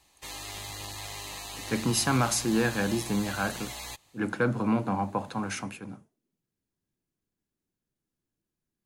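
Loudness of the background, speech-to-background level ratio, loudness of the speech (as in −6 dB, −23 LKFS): −38.0 LKFS, 9.5 dB, −28.5 LKFS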